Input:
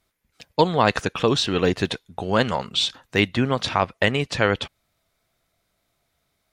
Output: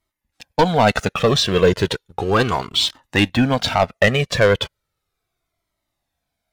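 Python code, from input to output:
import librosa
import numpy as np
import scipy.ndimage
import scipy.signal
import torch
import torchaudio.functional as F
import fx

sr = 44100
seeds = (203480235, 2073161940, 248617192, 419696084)

y = fx.peak_eq(x, sr, hz=450.0, db=2.5, octaves=2.6)
y = fx.leveller(y, sr, passes=2)
y = fx.comb_cascade(y, sr, direction='falling', hz=0.35)
y = y * librosa.db_to_amplitude(1.5)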